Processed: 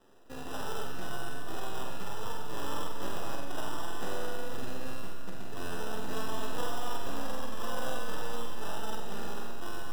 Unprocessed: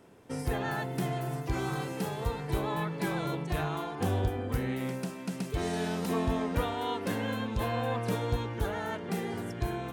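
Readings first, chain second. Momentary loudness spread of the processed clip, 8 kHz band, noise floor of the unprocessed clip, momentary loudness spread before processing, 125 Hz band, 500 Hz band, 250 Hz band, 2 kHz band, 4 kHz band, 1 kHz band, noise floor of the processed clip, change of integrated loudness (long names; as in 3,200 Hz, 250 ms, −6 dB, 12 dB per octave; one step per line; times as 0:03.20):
5 LU, +0.5 dB, −41 dBFS, 4 LU, −12.5 dB, −6.0 dB, −9.5 dB, −4.0 dB, −0.5 dB, −3.5 dB, −33 dBFS, −6.5 dB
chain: high-pass filter 260 Hz 12 dB per octave
dynamic equaliser 1,100 Hz, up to +4 dB, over −46 dBFS, Q 0.81
in parallel at −2 dB: brickwall limiter −30 dBFS, peak gain reduction 11.5 dB
on the sum: sample-rate reduction 2,200 Hz, jitter 0%
half-wave rectification
on a send: flutter between parallel walls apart 8 metres, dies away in 0.57 s
on the sum: four-comb reverb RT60 2.6 s, combs from 25 ms, DRR 9.5 dB
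level −6.5 dB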